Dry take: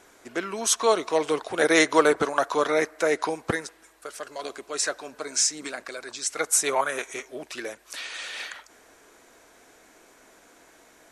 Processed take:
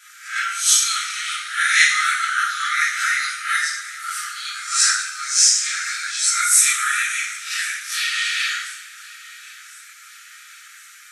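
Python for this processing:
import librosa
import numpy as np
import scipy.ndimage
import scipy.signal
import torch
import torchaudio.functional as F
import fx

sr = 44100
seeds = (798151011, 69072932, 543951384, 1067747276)

p1 = fx.spec_swells(x, sr, rise_s=0.4)
p2 = fx.rev_double_slope(p1, sr, seeds[0], early_s=0.65, late_s=2.4, knee_db=-18, drr_db=-8.5)
p3 = fx.rider(p2, sr, range_db=5, speed_s=0.5)
p4 = p2 + F.gain(torch.from_numpy(p3), 2.5).numpy()
p5 = fx.brickwall_highpass(p4, sr, low_hz=1200.0)
p6 = p5 + fx.echo_feedback(p5, sr, ms=1066, feedback_pct=50, wet_db=-21.0, dry=0)
y = F.gain(torch.from_numpy(p6), -7.5).numpy()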